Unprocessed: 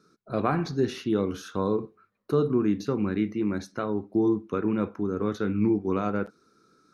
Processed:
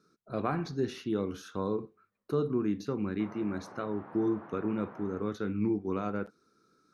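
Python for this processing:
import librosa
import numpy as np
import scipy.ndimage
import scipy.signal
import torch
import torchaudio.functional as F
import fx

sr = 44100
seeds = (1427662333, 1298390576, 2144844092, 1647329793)

y = fx.dmg_noise_band(x, sr, seeds[0], low_hz=120.0, high_hz=1300.0, level_db=-43.0, at=(3.19, 5.19), fade=0.02)
y = y * 10.0 ** (-6.0 / 20.0)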